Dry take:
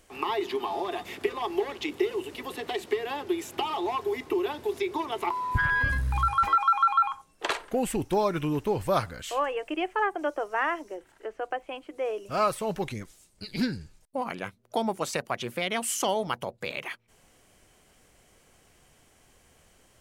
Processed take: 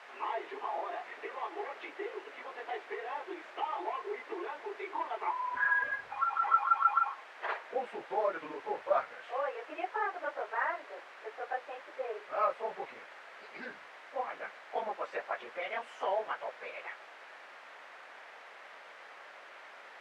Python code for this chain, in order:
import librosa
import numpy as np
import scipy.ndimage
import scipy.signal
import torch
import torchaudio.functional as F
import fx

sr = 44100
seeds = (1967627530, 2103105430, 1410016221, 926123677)

y = fx.phase_scramble(x, sr, seeds[0], window_ms=50)
y = fx.quant_dither(y, sr, seeds[1], bits=6, dither='triangular')
y = scipy.signal.sosfilt(scipy.signal.cheby1(2, 1.0, [560.0, 1900.0], 'bandpass', fs=sr, output='sos'), y)
y = F.gain(torch.from_numpy(y), -4.5).numpy()